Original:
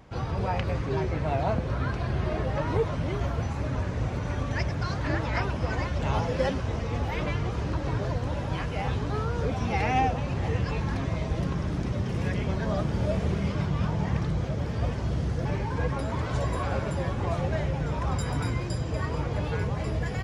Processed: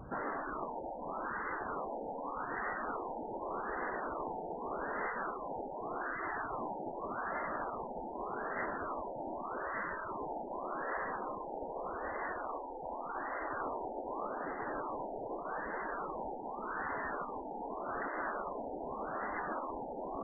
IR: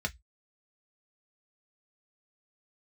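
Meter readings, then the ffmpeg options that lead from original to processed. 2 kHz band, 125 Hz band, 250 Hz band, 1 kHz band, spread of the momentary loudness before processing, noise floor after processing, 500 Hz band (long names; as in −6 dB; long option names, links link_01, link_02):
−5.0 dB, −31.5 dB, −14.0 dB, −4.0 dB, 3 LU, −44 dBFS, −8.5 dB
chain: -af "afftfilt=real='re*lt(hypot(re,im),0.0562)':imag='im*lt(hypot(re,im),0.0562)':win_size=1024:overlap=0.75,afftfilt=real='re*lt(b*sr/1024,920*pow(2100/920,0.5+0.5*sin(2*PI*0.84*pts/sr)))':imag='im*lt(b*sr/1024,920*pow(2100/920,0.5+0.5*sin(2*PI*0.84*pts/sr)))':win_size=1024:overlap=0.75,volume=4dB"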